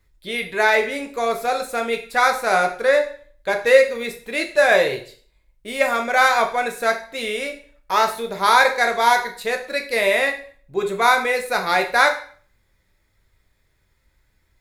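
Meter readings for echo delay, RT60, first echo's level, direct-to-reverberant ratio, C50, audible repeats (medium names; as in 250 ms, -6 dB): no echo, 0.50 s, no echo, 3.5 dB, 10.5 dB, no echo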